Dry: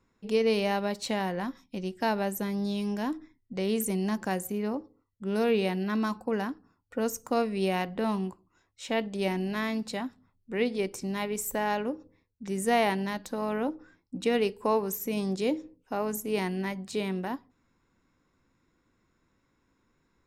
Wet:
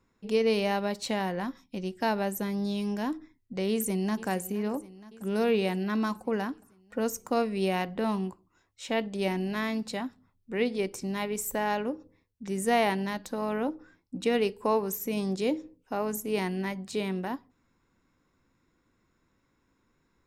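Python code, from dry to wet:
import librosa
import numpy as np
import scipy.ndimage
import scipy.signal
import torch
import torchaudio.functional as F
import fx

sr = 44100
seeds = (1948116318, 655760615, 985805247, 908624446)

y = fx.echo_throw(x, sr, start_s=3.7, length_s=0.58, ms=470, feedback_pct=70, wet_db=-17.0)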